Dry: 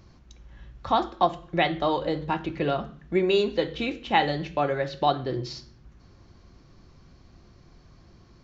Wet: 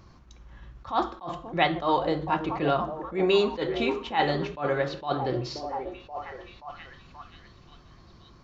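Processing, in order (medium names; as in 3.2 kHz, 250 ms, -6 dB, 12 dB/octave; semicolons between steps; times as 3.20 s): peaking EQ 1.1 kHz +6.5 dB 0.8 oct; on a send: repeats whose band climbs or falls 529 ms, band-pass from 350 Hz, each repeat 0.7 oct, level -8.5 dB; on the sum: attacks held to a fixed rise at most 190 dB/s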